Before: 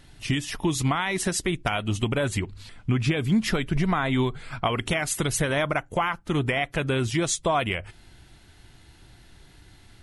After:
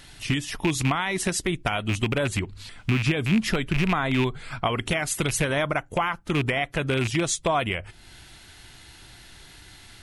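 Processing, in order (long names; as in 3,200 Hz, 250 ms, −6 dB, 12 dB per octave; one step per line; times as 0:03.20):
loose part that buzzes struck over −25 dBFS, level −17 dBFS
one half of a high-frequency compander encoder only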